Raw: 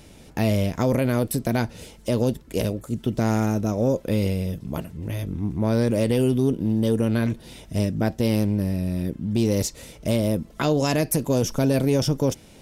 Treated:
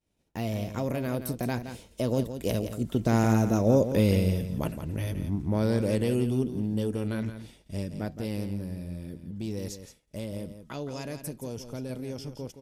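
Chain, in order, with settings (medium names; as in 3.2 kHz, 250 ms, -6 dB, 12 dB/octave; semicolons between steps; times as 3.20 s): Doppler pass-by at 3.96 s, 15 m/s, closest 18 m; delay 170 ms -10 dB; expander -45 dBFS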